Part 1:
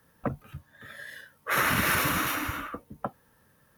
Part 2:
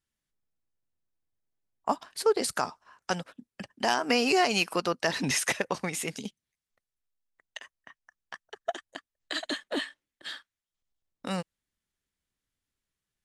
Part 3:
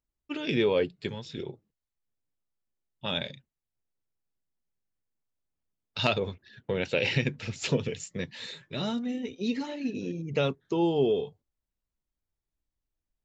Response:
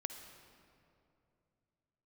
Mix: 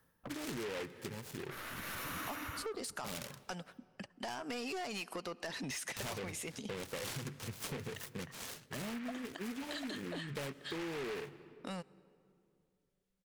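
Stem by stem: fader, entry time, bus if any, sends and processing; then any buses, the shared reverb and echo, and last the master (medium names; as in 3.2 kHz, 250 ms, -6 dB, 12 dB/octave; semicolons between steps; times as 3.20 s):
-8.0 dB, 0.00 s, send -16.5 dB, one-sided wavefolder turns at -24.5 dBFS; auto duck -17 dB, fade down 0.40 s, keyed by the third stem
-6.0 dB, 0.40 s, send -18.5 dB, none
-6.0 dB, 0.00 s, send -13 dB, delay time shaken by noise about 1.7 kHz, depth 0.17 ms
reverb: on, RT60 2.7 s, pre-delay 49 ms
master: saturation -29.5 dBFS, distortion -10 dB; compression, threshold -39 dBFS, peak gain reduction 7.5 dB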